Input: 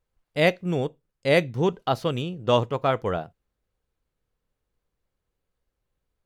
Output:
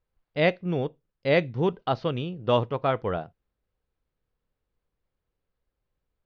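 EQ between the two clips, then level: steep low-pass 5.6 kHz 36 dB/octave; distance through air 110 m; -1.5 dB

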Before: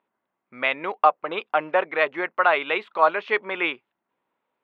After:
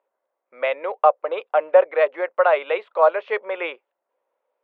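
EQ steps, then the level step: resonant high-pass 530 Hz, resonance Q 4.9; treble shelf 4.1 kHz -8.5 dB; -3.5 dB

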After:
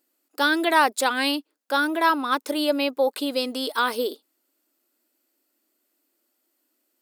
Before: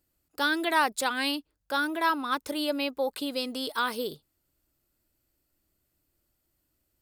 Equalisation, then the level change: dynamic bell 540 Hz, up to +3 dB, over -36 dBFS, Q 0.87; brick-wall FIR high-pass 220 Hz; +4.5 dB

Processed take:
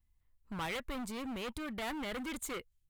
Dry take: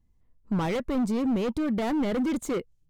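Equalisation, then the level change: amplifier tone stack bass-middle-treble 5-5-5; peaking EQ 180 Hz -8 dB 1.5 oct; peaking EQ 5.7 kHz -7.5 dB 0.93 oct; +8.5 dB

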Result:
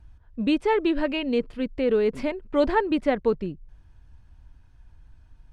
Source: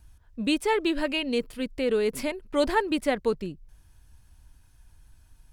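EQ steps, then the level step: tape spacing loss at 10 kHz 24 dB; +4.0 dB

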